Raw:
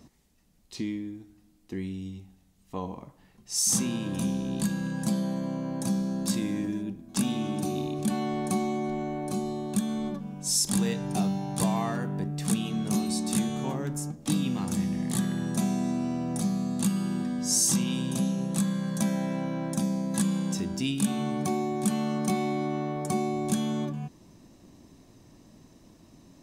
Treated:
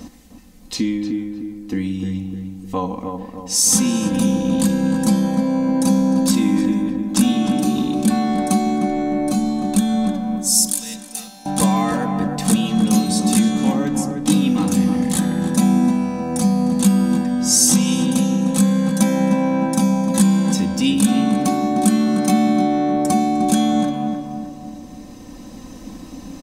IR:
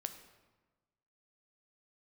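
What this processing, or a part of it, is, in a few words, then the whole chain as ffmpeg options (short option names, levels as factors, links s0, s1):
ducked reverb: -filter_complex "[0:a]asettb=1/sr,asplit=3[s0][s1][s2];[s0]atrim=end=13.854[s3];[s1]atrim=start=13.85:end=14.25,asetpts=PTS-STARTPTS,afade=t=in:d=0.004:c=qsin,afade=t=out:st=0.396:d=0.004:c=qsin,highshelf=f=12000:g=-9[s4];[s2]atrim=start=14.246[s5];[s3][s4]acrossfade=d=0.004:c1=hsin:c2=qsin[s6];[s6][s5]acrossfade=d=0.004:c1=qsin:c2=hsin,aecho=1:1:3.9:0.72,asettb=1/sr,asplit=3[s7][s8][s9];[s7]atrim=end=10.364[s10];[s8]atrim=start=10.36:end=11.46,asetpts=PTS-STARTPTS,afade=t=in:d=0.004:c=qsin,afade=t=out:st=1.096:d=0.004:c=qsin,aderivative[s11];[s9]atrim=start=11.456[s12];[s10][s11]acrossfade=d=0.004:c1=hsin:c2=qsin[s13];[s13][s12]acrossfade=d=0.004:c1=qsin:c2=hsin,asplit=3[s14][s15][s16];[1:a]atrim=start_sample=2205[s17];[s15][s17]afir=irnorm=-1:irlink=0[s18];[s16]apad=whole_len=1165300[s19];[s18][s19]sidechaincompress=threshold=0.00708:ratio=8:attack=41:release=1330,volume=2.24[s20];[s14][s20]amix=inputs=2:normalize=0,asplit=2[s21][s22];[s22]adelay=305,lowpass=f=1500:p=1,volume=0.562,asplit=2[s23][s24];[s24]adelay=305,lowpass=f=1500:p=1,volume=0.5,asplit=2[s25][s26];[s26]adelay=305,lowpass=f=1500:p=1,volume=0.5,asplit=2[s27][s28];[s28]adelay=305,lowpass=f=1500:p=1,volume=0.5,asplit=2[s29][s30];[s30]adelay=305,lowpass=f=1500:p=1,volume=0.5,asplit=2[s31][s32];[s32]adelay=305,lowpass=f=1500:p=1,volume=0.5[s33];[s21][s23][s25][s27][s29][s31][s33]amix=inputs=7:normalize=0,volume=2.24"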